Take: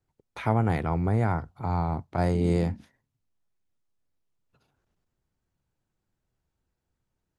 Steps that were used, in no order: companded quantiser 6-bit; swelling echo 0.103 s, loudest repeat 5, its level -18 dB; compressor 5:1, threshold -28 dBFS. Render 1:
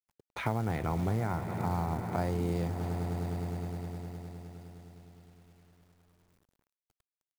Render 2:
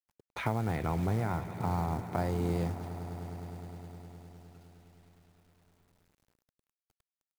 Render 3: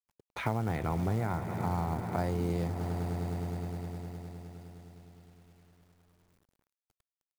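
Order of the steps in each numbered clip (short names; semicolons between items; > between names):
swelling echo > compressor > companded quantiser; compressor > swelling echo > companded quantiser; swelling echo > companded quantiser > compressor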